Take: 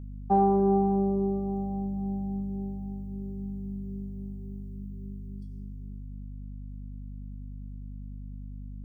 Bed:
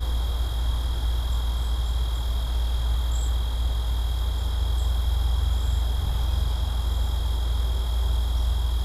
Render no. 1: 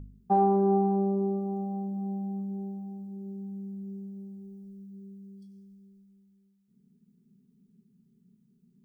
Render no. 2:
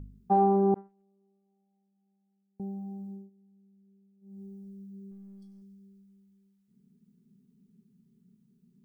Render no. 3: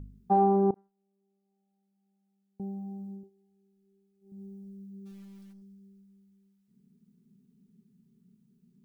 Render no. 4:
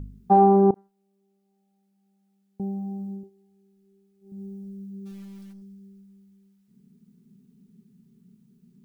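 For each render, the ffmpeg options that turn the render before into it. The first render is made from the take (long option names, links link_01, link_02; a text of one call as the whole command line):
ffmpeg -i in.wav -af "bandreject=frequency=50:width_type=h:width=4,bandreject=frequency=100:width_type=h:width=4,bandreject=frequency=150:width_type=h:width=4,bandreject=frequency=200:width_type=h:width=4,bandreject=frequency=250:width_type=h:width=4,bandreject=frequency=300:width_type=h:width=4,bandreject=frequency=350:width_type=h:width=4,bandreject=frequency=400:width_type=h:width=4,bandreject=frequency=450:width_type=h:width=4,bandreject=frequency=500:width_type=h:width=4" out.wav
ffmpeg -i in.wav -filter_complex "[0:a]asettb=1/sr,asplit=3[link_01][link_02][link_03];[link_01]atrim=end=0.744[link_04];[link_02]atrim=start=0.74:end=2.6,asetpts=PTS-STARTPTS,afade=type=in:duration=0.004:curve=qsin,afade=type=out:start_time=1.856:duration=0.004:curve=qsin,agate=range=-42dB:threshold=-21dB:ratio=16:release=100:detection=peak[link_05];[link_03]atrim=start=2.596[link_06];[link_04][link_05]acrossfade=duration=0.004:curve1=hsin:curve2=qsin[link_07];[link_07][link_06]acrossfade=duration=0.004:curve1=qsin:curve2=hsin,asettb=1/sr,asplit=3[link_08][link_09][link_10];[link_08]atrim=end=5.114[link_11];[link_09]atrim=start=5.11:end=5.62,asetpts=PTS-STARTPTS,afade=type=in:duration=0.004:curve=qsin,afade=type=out:start_time=0.506:duration=0.004:curve=qsin,aeval=exprs='if(lt(val(0),0),0.708*val(0),val(0))':channel_layout=same[link_12];[link_10]atrim=start=5.616[link_13];[link_11][link_12]acrossfade=duration=0.004:curve1=hsin:curve2=qsin[link_14];[link_14][link_13]acrossfade=duration=0.004:curve1=qsin:curve2=hsin,asplit=3[link_15][link_16][link_17];[link_15]atrim=end=3.3,asetpts=PTS-STARTPTS,afade=type=out:start_time=3.1:duration=0.2:silence=0.0668344[link_18];[link_16]atrim=start=3.3:end=4.21,asetpts=PTS-STARTPTS,volume=-23.5dB[link_19];[link_17]atrim=start=4.21,asetpts=PTS-STARTPTS,afade=type=in:duration=0.2:silence=0.0668344[link_20];[link_18][link_19][link_20]concat=n=3:v=0:a=1" out.wav
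ffmpeg -i in.wav -filter_complex "[0:a]asettb=1/sr,asplit=3[link_01][link_02][link_03];[link_01]atrim=end=3.234[link_04];[link_02]atrim=start=3.23:end=4.32,asetpts=PTS-STARTPTS,afade=type=in:duration=0.004:curve=qsin,afade=type=out:start_time=1.086:duration=0.004:curve=qsin,aecho=1:1:2.4:0.65,atrim=end_sample=48069[link_05];[link_03]atrim=start=4.316[link_06];[link_04][link_05]acrossfade=duration=0.004:curve1=hsin:curve2=qsin[link_07];[link_07][link_06]acrossfade=duration=0.004:curve1=qsin:curve2=hsin,asplit=3[link_08][link_09][link_10];[link_08]afade=type=out:start_time=5.05:duration=0.02[link_11];[link_09]acrusher=bits=4:mode=log:mix=0:aa=0.000001,afade=type=in:start_time=5.05:duration=0.02,afade=type=out:start_time=5.52:duration=0.02[link_12];[link_10]afade=type=in:start_time=5.52:duration=0.02[link_13];[link_11][link_12][link_13]amix=inputs=3:normalize=0,asplit=2[link_14][link_15];[link_14]atrim=end=0.71,asetpts=PTS-STARTPTS,afade=type=out:start_time=0.706:duration=0.004:curve=hsin:silence=0.0944061[link_16];[link_15]atrim=start=0.71,asetpts=PTS-STARTPTS,afade=type=in:duration=1.96:curve=qsin:silence=0.0944061[link_17];[link_16][link_17]concat=n=2:v=0:a=1" out.wav
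ffmpeg -i in.wav -af "volume=7dB" out.wav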